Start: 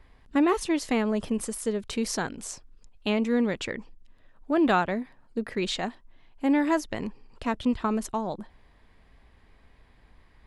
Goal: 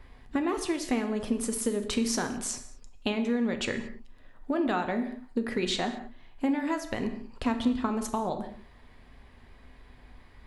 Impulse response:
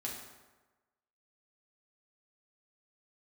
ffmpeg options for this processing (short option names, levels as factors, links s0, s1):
-filter_complex "[0:a]acompressor=threshold=0.0316:ratio=6,asplit=2[s0][s1];[1:a]atrim=start_sample=2205,afade=t=out:st=0.28:d=0.01,atrim=end_sample=12789[s2];[s1][s2]afir=irnorm=-1:irlink=0,volume=0.891[s3];[s0][s3]amix=inputs=2:normalize=0"